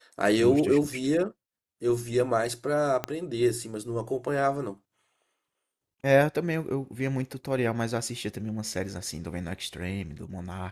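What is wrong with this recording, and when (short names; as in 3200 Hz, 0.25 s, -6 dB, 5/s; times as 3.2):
3.04 pop -13 dBFS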